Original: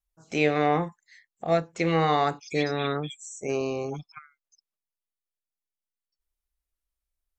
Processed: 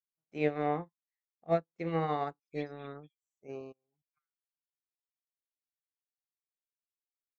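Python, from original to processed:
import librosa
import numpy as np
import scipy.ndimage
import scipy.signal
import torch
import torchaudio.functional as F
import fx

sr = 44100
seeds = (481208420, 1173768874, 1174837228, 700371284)

y = fx.lowpass(x, sr, hz=1400.0, slope=6)
y = fx.level_steps(y, sr, step_db=15, at=(3.69, 4.12), fade=0.02)
y = fx.upward_expand(y, sr, threshold_db=-45.0, expansion=2.5)
y = F.gain(torch.from_numpy(y), -3.0).numpy()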